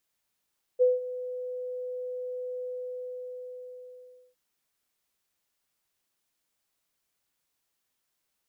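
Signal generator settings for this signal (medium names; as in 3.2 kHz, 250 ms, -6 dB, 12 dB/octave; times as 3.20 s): ADSR sine 501 Hz, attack 29 ms, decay 177 ms, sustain -16 dB, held 1.84 s, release 1720 ms -16.5 dBFS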